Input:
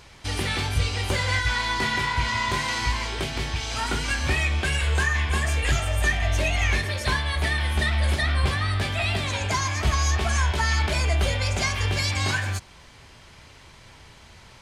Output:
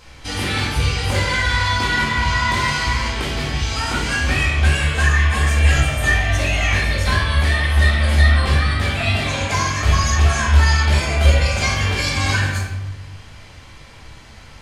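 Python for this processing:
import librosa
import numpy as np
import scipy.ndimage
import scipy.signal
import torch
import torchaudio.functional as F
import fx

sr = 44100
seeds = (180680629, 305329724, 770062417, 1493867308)

y = fx.room_shoebox(x, sr, seeds[0], volume_m3=410.0, walls='mixed', distance_m=2.1)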